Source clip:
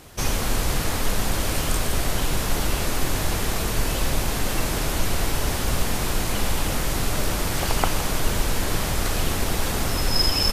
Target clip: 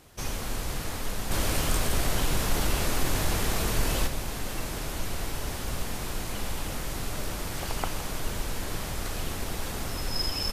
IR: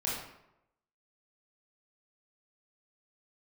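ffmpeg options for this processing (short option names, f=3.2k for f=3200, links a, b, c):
-filter_complex "[0:a]asplit=3[a][b][c];[a]afade=t=out:st=1.3:d=0.02[d];[b]acontrast=68,afade=t=in:st=1.3:d=0.02,afade=t=out:st=4.06:d=0.02[e];[c]afade=t=in:st=4.06:d=0.02[f];[d][e][f]amix=inputs=3:normalize=0,volume=-9dB"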